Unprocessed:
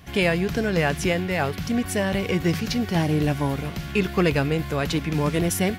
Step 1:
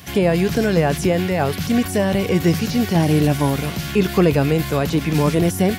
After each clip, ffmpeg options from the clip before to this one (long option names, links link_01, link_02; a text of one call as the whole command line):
ffmpeg -i in.wav -filter_complex "[0:a]highpass=70,highshelf=frequency=3300:gain=10,acrossover=split=1000[link_01][link_02];[link_02]alimiter=level_in=3dB:limit=-24dB:level=0:latency=1:release=40,volume=-3dB[link_03];[link_01][link_03]amix=inputs=2:normalize=0,volume=6dB" out.wav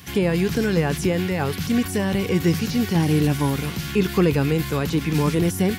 ffmpeg -i in.wav -af "equalizer=frequency=640:width=4.8:gain=-12.5,volume=-2.5dB" out.wav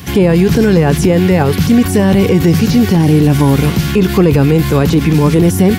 ffmpeg -i in.wav -filter_complex "[0:a]acrossover=split=900[link_01][link_02];[link_01]acontrast=54[link_03];[link_03][link_02]amix=inputs=2:normalize=0,alimiter=level_in=10.5dB:limit=-1dB:release=50:level=0:latency=1,volume=-1dB" out.wav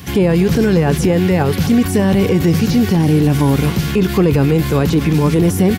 ffmpeg -i in.wav -filter_complex "[0:a]asplit=2[link_01][link_02];[link_02]adelay=240,highpass=300,lowpass=3400,asoftclip=type=hard:threshold=-11dB,volume=-14dB[link_03];[link_01][link_03]amix=inputs=2:normalize=0,volume=-3.5dB" out.wav